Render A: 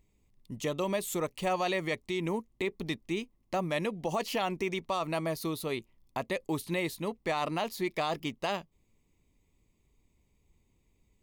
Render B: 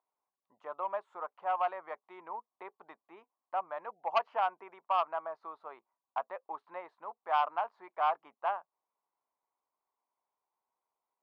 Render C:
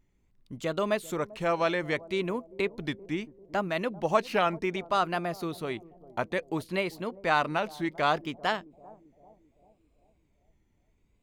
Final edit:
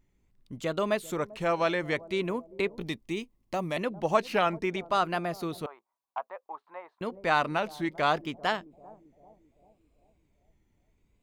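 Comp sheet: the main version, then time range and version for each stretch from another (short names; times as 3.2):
C
2.81–3.77 from A
5.66–7.01 from B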